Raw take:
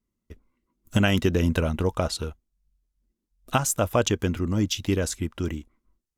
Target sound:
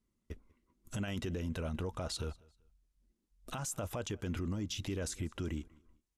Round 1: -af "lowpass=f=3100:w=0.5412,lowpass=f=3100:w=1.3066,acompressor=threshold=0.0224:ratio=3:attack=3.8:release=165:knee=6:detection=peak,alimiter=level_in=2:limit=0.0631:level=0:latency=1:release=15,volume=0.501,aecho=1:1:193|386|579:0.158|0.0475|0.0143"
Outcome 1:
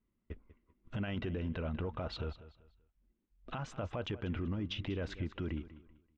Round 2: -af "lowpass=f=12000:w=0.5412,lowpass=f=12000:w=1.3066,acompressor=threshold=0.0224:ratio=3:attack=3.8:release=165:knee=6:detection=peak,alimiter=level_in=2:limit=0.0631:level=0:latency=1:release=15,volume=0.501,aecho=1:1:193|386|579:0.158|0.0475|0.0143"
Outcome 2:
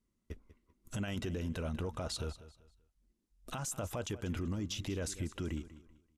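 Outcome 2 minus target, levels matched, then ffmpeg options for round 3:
echo-to-direct +9.5 dB
-af "lowpass=f=12000:w=0.5412,lowpass=f=12000:w=1.3066,acompressor=threshold=0.0224:ratio=3:attack=3.8:release=165:knee=6:detection=peak,alimiter=level_in=2:limit=0.0631:level=0:latency=1:release=15,volume=0.501,aecho=1:1:193|386:0.0531|0.0159"

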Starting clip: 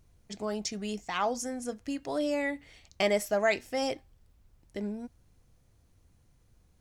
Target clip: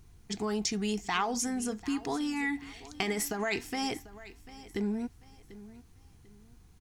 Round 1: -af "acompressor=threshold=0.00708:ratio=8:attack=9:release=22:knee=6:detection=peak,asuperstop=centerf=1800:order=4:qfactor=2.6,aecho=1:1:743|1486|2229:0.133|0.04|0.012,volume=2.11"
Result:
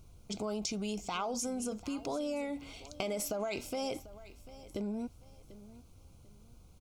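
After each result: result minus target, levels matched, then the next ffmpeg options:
compression: peak gain reduction +6.5 dB; 2 kHz band -6.5 dB
-af "acompressor=threshold=0.0168:ratio=8:attack=9:release=22:knee=6:detection=peak,asuperstop=centerf=1800:order=4:qfactor=2.6,aecho=1:1:743|1486|2229:0.133|0.04|0.012,volume=2.11"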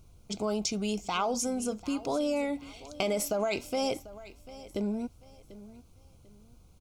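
2 kHz band -6.0 dB
-af "acompressor=threshold=0.0168:ratio=8:attack=9:release=22:knee=6:detection=peak,asuperstop=centerf=570:order=4:qfactor=2.6,aecho=1:1:743|1486|2229:0.133|0.04|0.012,volume=2.11"

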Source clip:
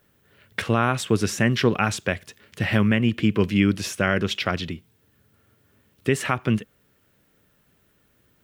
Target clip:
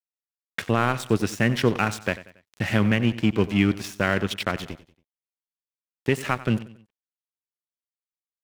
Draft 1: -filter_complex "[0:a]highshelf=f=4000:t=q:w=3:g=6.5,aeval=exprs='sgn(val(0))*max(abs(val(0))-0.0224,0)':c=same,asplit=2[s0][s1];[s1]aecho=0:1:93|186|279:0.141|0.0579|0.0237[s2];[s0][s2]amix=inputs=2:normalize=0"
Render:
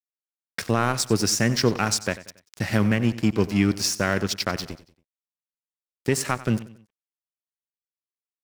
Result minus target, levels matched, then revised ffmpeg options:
8 kHz band +11.5 dB
-filter_complex "[0:a]aeval=exprs='sgn(val(0))*max(abs(val(0))-0.0224,0)':c=same,asplit=2[s0][s1];[s1]aecho=0:1:93|186|279:0.141|0.0579|0.0237[s2];[s0][s2]amix=inputs=2:normalize=0"

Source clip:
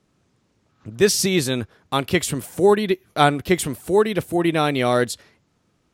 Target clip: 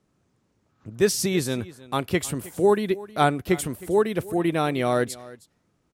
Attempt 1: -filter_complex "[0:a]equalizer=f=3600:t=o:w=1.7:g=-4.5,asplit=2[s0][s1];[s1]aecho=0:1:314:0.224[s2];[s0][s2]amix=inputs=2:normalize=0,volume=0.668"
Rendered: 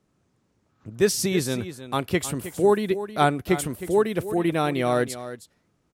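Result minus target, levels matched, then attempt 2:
echo-to-direct +6.5 dB
-filter_complex "[0:a]equalizer=f=3600:t=o:w=1.7:g=-4.5,asplit=2[s0][s1];[s1]aecho=0:1:314:0.106[s2];[s0][s2]amix=inputs=2:normalize=0,volume=0.668"

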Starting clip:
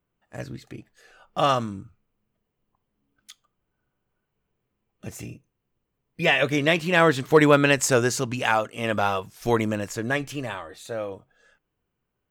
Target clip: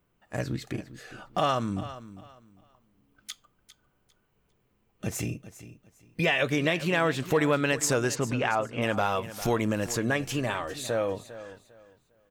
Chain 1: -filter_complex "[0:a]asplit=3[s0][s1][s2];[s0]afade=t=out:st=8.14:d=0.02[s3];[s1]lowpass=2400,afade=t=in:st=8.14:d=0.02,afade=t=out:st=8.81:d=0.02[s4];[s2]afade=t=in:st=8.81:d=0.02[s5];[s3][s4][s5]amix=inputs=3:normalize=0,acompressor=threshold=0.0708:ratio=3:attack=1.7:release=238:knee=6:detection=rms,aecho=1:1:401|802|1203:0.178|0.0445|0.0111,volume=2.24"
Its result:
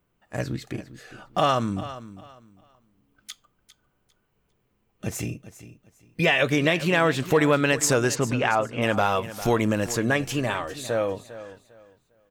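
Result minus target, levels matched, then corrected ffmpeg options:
compression: peak gain reduction -4.5 dB
-filter_complex "[0:a]asplit=3[s0][s1][s2];[s0]afade=t=out:st=8.14:d=0.02[s3];[s1]lowpass=2400,afade=t=in:st=8.14:d=0.02,afade=t=out:st=8.81:d=0.02[s4];[s2]afade=t=in:st=8.81:d=0.02[s5];[s3][s4][s5]amix=inputs=3:normalize=0,acompressor=threshold=0.0335:ratio=3:attack=1.7:release=238:knee=6:detection=rms,aecho=1:1:401|802|1203:0.178|0.0445|0.0111,volume=2.24"

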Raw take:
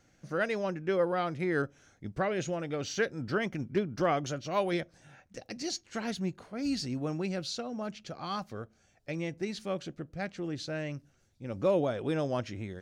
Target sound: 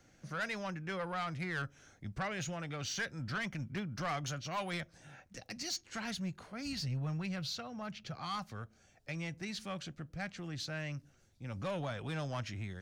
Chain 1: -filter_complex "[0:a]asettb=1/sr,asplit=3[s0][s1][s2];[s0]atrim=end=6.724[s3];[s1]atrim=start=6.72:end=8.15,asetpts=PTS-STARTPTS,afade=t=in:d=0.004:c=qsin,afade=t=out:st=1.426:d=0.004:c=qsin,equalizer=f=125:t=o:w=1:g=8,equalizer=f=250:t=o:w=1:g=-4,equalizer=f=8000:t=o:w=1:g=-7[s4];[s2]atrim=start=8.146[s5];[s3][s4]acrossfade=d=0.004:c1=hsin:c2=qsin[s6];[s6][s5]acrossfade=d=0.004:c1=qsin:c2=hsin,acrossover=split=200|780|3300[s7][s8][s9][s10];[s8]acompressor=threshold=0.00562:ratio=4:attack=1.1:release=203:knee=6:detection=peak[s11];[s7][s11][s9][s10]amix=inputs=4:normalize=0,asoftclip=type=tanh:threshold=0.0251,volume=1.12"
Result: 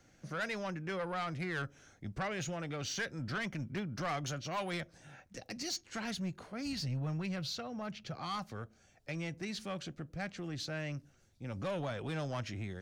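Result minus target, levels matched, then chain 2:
compression: peak gain reduction -8.5 dB
-filter_complex "[0:a]asettb=1/sr,asplit=3[s0][s1][s2];[s0]atrim=end=6.724[s3];[s1]atrim=start=6.72:end=8.15,asetpts=PTS-STARTPTS,afade=t=in:d=0.004:c=qsin,afade=t=out:st=1.426:d=0.004:c=qsin,equalizer=f=125:t=o:w=1:g=8,equalizer=f=250:t=o:w=1:g=-4,equalizer=f=8000:t=o:w=1:g=-7[s4];[s2]atrim=start=8.146[s5];[s3][s4]acrossfade=d=0.004:c1=hsin:c2=qsin[s6];[s6][s5]acrossfade=d=0.004:c1=qsin:c2=hsin,acrossover=split=200|780|3300[s7][s8][s9][s10];[s8]acompressor=threshold=0.00158:ratio=4:attack=1.1:release=203:knee=6:detection=peak[s11];[s7][s11][s9][s10]amix=inputs=4:normalize=0,asoftclip=type=tanh:threshold=0.0251,volume=1.12"

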